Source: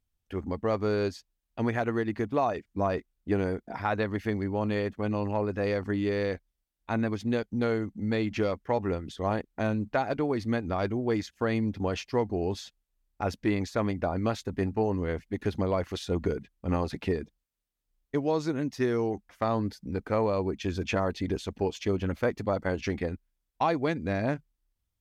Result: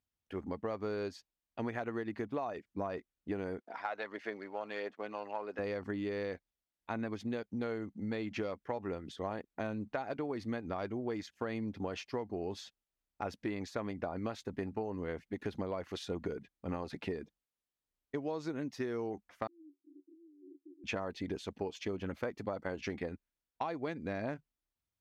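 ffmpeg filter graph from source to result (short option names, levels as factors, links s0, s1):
-filter_complex "[0:a]asettb=1/sr,asplit=3[s0][s1][s2];[s0]atrim=end=3.604[s3];[s1]atrim=start=3.6:end=5.59,asetpts=PTS-STARTPTS,afade=t=in:d=0.004:c=qsin,afade=t=out:st=1.986:d=0.004:c=qsin,aeval=exprs='if(lt(val(0),0),0.708*val(0),val(0))':c=same,aphaser=in_gain=1:out_gain=1:delay=1.5:decay=0.3:speed=1.5:type=sinusoidal,highpass=470,lowpass=6900[s4];[s2]atrim=start=5.586[s5];[s3][s4]acrossfade=d=0.004:c1=hsin:c2=qsin[s6];[s6][s5]acrossfade=d=0.004:c1=qsin:c2=hsin,asettb=1/sr,asplit=3[s7][s8][s9];[s7]atrim=end=19.474[s10];[s8]atrim=start=19.47:end=20.84,asetpts=PTS-STARTPTS,afade=t=in:d=0.004:c=qsin,afade=t=out:st=1.366:d=0.004:c=qsin,acompressor=threshold=0.01:ratio=6:attack=3.2:release=140:knee=1:detection=peak,asuperpass=centerf=320:order=12:qfactor=3.5[s11];[s9]atrim=start=20.836[s12];[s10][s11]acrossfade=d=0.004:c1=hsin:c2=qsin[s13];[s13][s12]acrossfade=d=0.004:c1=qsin:c2=hsin,highpass=f=190:p=1,highshelf=f=5500:g=-6,acompressor=threshold=0.0316:ratio=6,volume=0.668"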